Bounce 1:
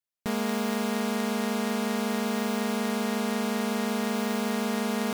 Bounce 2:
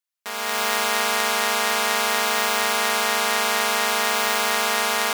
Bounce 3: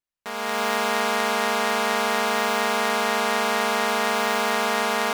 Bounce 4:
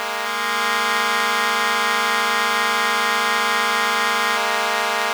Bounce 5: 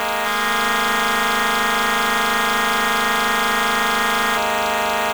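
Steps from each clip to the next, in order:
high-pass filter 910 Hz 12 dB per octave; automatic gain control gain up to 11 dB; level +3.5 dB
spectral tilt −2.5 dB per octave
meter weighting curve A; background noise violet −48 dBFS; backwards echo 760 ms −4 dB; level +3 dB
soft clipping −21.5 dBFS, distortion −7 dB; double-tracking delay 16 ms −10.5 dB; level +7.5 dB

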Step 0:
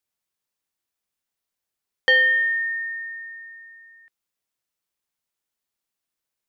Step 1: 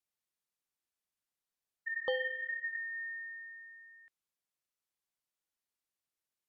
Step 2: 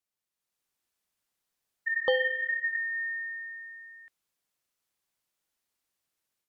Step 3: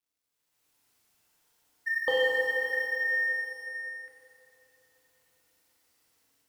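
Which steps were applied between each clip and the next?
healed spectral selection 0:01.90–0:02.75, 1,300–3,000 Hz after; treble cut that deepens with the level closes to 1,700 Hz, closed at −27 dBFS; level −7.5 dB
automatic gain control gain up to 8 dB
mu-law and A-law mismatch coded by mu; feedback delay network reverb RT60 3.6 s, high-frequency decay 0.65×, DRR −4 dB; level −4 dB

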